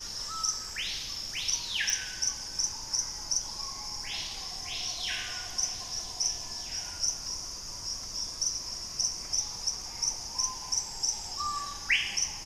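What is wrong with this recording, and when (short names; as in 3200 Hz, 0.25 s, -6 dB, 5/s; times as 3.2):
1.9 pop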